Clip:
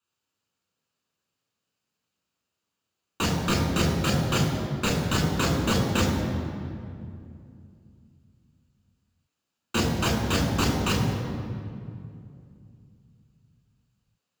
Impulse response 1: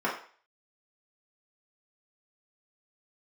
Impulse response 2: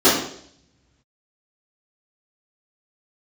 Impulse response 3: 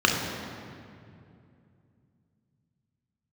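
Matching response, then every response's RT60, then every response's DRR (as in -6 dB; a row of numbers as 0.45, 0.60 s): 3; 0.45, 0.65, 2.5 s; -6.0, -14.0, 0.0 dB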